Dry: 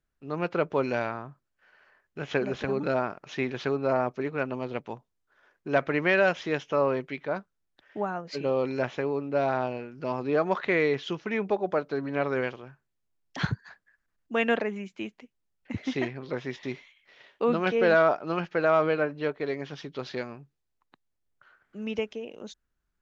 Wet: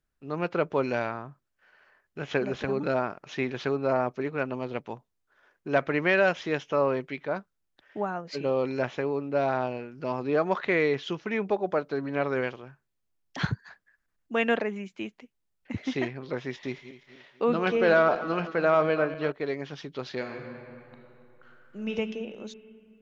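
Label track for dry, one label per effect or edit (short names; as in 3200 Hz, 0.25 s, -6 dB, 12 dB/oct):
16.540000	19.320000	regenerating reverse delay 0.124 s, feedback 63%, level -13 dB
20.170000	21.960000	reverb throw, RT60 2.9 s, DRR 1 dB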